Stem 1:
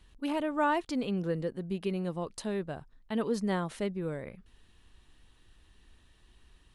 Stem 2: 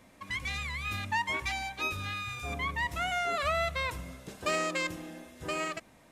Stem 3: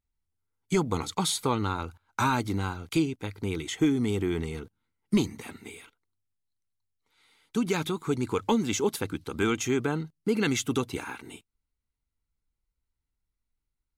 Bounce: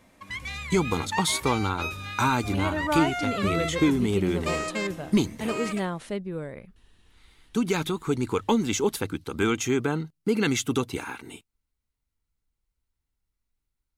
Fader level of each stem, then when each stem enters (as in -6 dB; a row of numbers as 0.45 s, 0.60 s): +1.5 dB, 0.0 dB, +2.0 dB; 2.30 s, 0.00 s, 0.00 s